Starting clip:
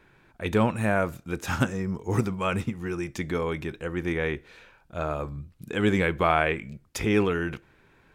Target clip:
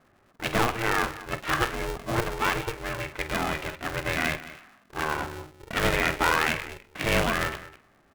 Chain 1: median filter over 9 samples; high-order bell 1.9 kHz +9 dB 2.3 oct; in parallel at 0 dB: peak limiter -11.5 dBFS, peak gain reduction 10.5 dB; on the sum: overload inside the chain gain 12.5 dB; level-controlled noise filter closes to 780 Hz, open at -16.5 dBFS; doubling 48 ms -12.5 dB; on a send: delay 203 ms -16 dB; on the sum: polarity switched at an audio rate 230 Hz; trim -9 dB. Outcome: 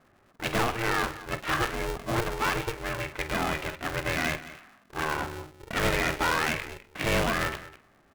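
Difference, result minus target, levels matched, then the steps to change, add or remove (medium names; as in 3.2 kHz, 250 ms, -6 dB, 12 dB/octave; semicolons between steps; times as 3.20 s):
overload inside the chain: distortion +10 dB
change: overload inside the chain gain 5.5 dB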